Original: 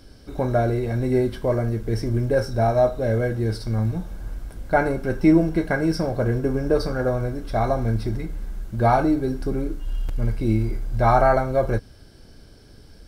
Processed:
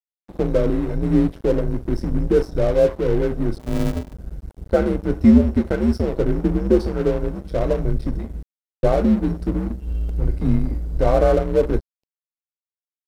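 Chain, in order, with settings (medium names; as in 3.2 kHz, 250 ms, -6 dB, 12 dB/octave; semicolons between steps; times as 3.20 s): 3.58–4.14 s: sorted samples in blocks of 128 samples; resonant low shelf 750 Hz +8.5 dB, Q 1.5; frequency shift -90 Hz; crossover distortion -26 dBFS; 8.43–8.83 s: mute; trim -5 dB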